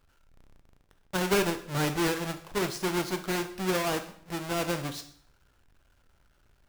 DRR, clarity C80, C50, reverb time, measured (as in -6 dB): 7.5 dB, 15.5 dB, 12.0 dB, 0.65 s